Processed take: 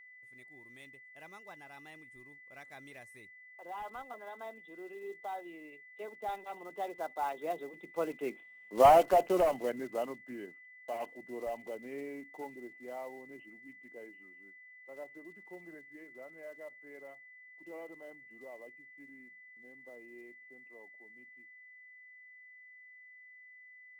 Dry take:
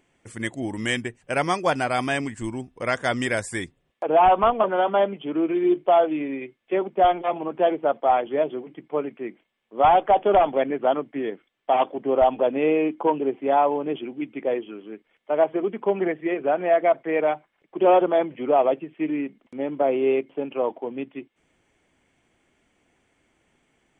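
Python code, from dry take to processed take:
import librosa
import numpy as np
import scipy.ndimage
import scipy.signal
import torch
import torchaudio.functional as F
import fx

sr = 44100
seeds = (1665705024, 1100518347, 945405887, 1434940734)

y = fx.block_float(x, sr, bits=5)
y = fx.doppler_pass(y, sr, speed_mps=37, closest_m=9.2, pass_at_s=8.57)
y = y + 10.0 ** (-53.0 / 20.0) * np.sin(2.0 * np.pi * 2000.0 * np.arange(len(y)) / sr)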